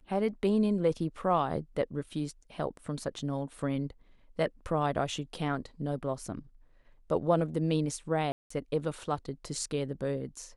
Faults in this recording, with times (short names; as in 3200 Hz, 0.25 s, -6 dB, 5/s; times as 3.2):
8.32–8.5 gap 0.184 s